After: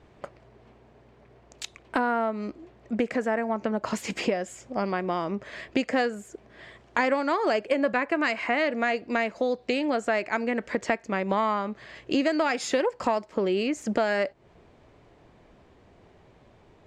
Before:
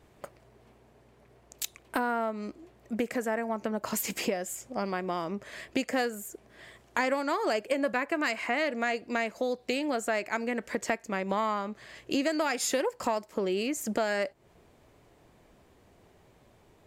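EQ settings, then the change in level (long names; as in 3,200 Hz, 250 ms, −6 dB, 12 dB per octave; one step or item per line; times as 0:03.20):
high-frequency loss of the air 110 metres
+4.5 dB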